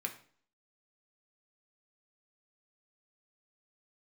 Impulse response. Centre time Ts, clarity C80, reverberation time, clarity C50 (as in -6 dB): 11 ms, 15.5 dB, 0.50 s, 11.5 dB